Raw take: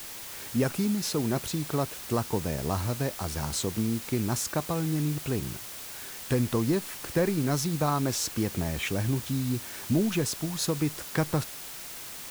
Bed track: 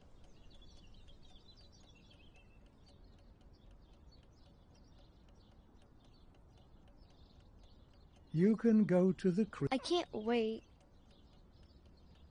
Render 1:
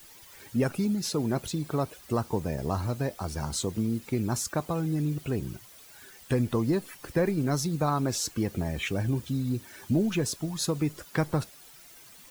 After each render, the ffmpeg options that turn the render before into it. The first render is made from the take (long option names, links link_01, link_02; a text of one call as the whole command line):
ffmpeg -i in.wav -af "afftdn=noise_reduction=13:noise_floor=-41" out.wav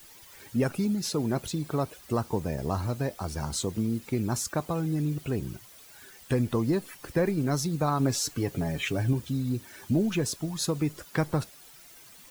ffmpeg -i in.wav -filter_complex "[0:a]asettb=1/sr,asplit=3[link_01][link_02][link_03];[link_01]atrim=end=7.994[link_04];[link_02]atrim=start=7.99:end=9.13,asetpts=PTS-STARTPTS,afade=type=in:duration=0.004:curve=qsin,afade=type=out:start_time=1.136:duration=0.004:curve=qsin,aecho=1:1:7.1:0.56,atrim=end_sample=50274[link_05];[link_03]atrim=start=9.126[link_06];[link_04][link_05]acrossfade=duration=0.004:curve1=hsin:curve2=qsin[link_07];[link_07][link_06]acrossfade=duration=0.004:curve1=qsin:curve2=hsin" out.wav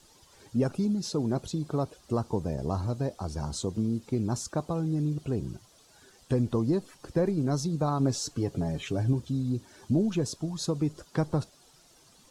ffmpeg -i in.wav -af "lowpass=6600,equalizer=frequency=2100:width=1.1:gain=-11.5" out.wav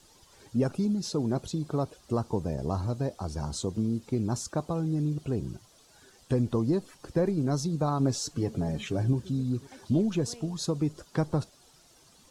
ffmpeg -i in.wav -i bed.wav -filter_complex "[1:a]volume=-15.5dB[link_01];[0:a][link_01]amix=inputs=2:normalize=0" out.wav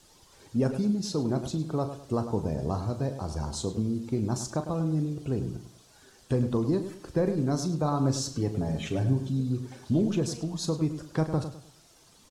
ffmpeg -i in.wav -filter_complex "[0:a]asplit=2[link_01][link_02];[link_02]adelay=38,volume=-11dB[link_03];[link_01][link_03]amix=inputs=2:normalize=0,asplit=2[link_04][link_05];[link_05]adelay=103,lowpass=frequency=3800:poles=1,volume=-10dB,asplit=2[link_06][link_07];[link_07]adelay=103,lowpass=frequency=3800:poles=1,volume=0.32,asplit=2[link_08][link_09];[link_09]adelay=103,lowpass=frequency=3800:poles=1,volume=0.32,asplit=2[link_10][link_11];[link_11]adelay=103,lowpass=frequency=3800:poles=1,volume=0.32[link_12];[link_04][link_06][link_08][link_10][link_12]amix=inputs=5:normalize=0" out.wav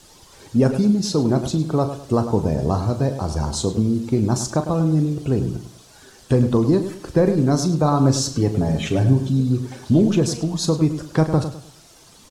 ffmpeg -i in.wav -af "volume=9.5dB" out.wav